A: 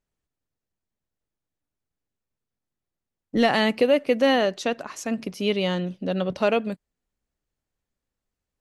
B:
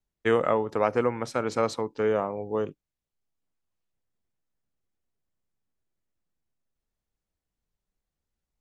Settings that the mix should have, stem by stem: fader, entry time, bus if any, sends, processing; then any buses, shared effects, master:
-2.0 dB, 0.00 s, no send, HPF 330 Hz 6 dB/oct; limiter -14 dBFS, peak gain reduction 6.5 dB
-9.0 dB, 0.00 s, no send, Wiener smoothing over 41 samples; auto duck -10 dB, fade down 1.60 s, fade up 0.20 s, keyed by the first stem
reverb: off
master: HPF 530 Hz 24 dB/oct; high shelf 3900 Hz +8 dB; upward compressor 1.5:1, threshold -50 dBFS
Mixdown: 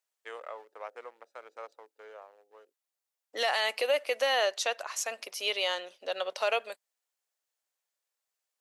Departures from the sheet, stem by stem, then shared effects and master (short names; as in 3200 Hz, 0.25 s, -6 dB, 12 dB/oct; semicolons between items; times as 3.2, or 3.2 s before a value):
stem B -9.0 dB -> -16.0 dB; master: missing upward compressor 1.5:1, threshold -50 dBFS